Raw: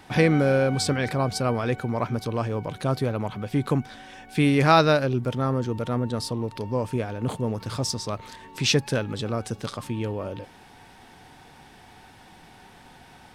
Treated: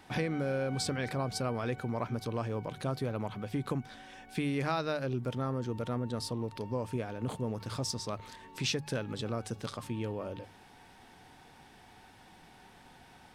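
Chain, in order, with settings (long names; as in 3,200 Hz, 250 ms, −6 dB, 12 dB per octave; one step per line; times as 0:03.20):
downward compressor 6 to 1, threshold −22 dBFS, peak gain reduction 10 dB
mains-hum notches 50/100/150 Hz
level −6.5 dB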